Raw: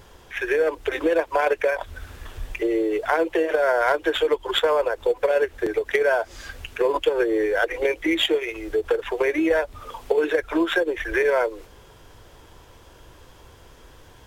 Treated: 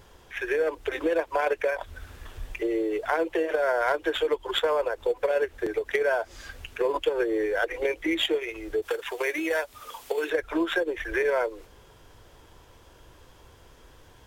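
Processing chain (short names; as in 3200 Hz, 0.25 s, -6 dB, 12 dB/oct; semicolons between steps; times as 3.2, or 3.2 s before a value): 8.82–10.3 tilt +3 dB/oct; gain -4.5 dB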